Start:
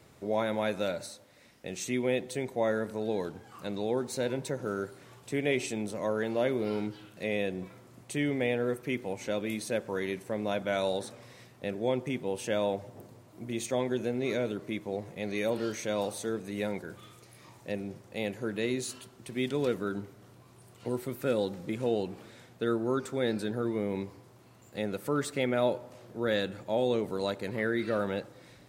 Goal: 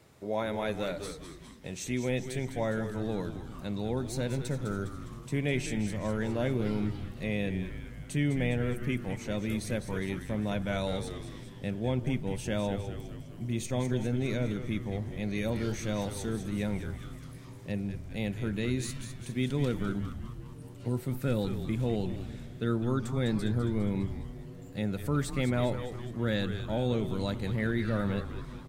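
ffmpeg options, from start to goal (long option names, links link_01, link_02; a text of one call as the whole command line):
ffmpeg -i in.wav -filter_complex "[0:a]asubboost=boost=5:cutoff=180,asplit=2[link_01][link_02];[link_02]asplit=7[link_03][link_04][link_05][link_06][link_07][link_08][link_09];[link_03]adelay=204,afreqshift=-120,volume=-9dB[link_10];[link_04]adelay=408,afreqshift=-240,volume=-13.7dB[link_11];[link_05]adelay=612,afreqshift=-360,volume=-18.5dB[link_12];[link_06]adelay=816,afreqshift=-480,volume=-23.2dB[link_13];[link_07]adelay=1020,afreqshift=-600,volume=-27.9dB[link_14];[link_08]adelay=1224,afreqshift=-720,volume=-32.7dB[link_15];[link_09]adelay=1428,afreqshift=-840,volume=-37.4dB[link_16];[link_10][link_11][link_12][link_13][link_14][link_15][link_16]amix=inputs=7:normalize=0[link_17];[link_01][link_17]amix=inputs=2:normalize=0,volume=-2dB" out.wav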